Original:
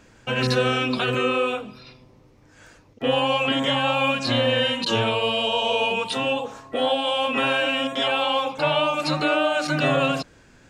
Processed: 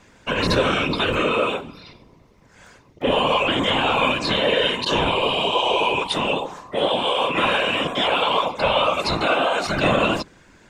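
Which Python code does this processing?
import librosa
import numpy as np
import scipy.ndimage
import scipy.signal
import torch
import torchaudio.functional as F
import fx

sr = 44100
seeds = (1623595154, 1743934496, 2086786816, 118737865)

y = fx.hum_notches(x, sr, base_hz=60, count=5)
y = fx.whisperise(y, sr, seeds[0])
y = fx.small_body(y, sr, hz=(1000.0, 2100.0, 3600.0), ring_ms=25, db=6)
y = F.gain(torch.from_numpy(y), 1.5).numpy()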